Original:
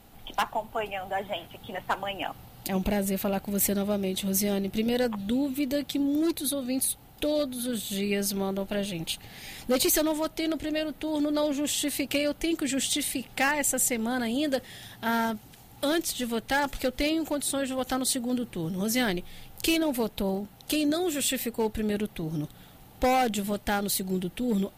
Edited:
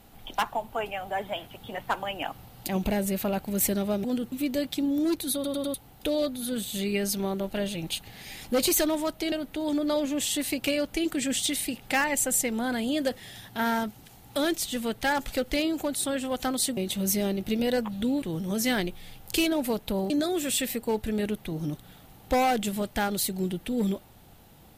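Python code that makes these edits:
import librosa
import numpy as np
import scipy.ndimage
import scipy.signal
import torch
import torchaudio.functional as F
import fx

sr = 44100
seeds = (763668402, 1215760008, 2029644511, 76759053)

y = fx.edit(x, sr, fx.swap(start_s=4.04, length_s=1.45, other_s=18.24, other_length_s=0.28),
    fx.stutter_over(start_s=6.51, slice_s=0.1, count=4),
    fx.cut(start_s=10.49, length_s=0.3),
    fx.cut(start_s=20.4, length_s=0.41), tone=tone)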